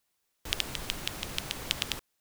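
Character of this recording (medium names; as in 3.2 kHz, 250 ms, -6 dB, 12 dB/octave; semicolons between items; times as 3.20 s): noise floor -78 dBFS; spectral tilt -2.5 dB/octave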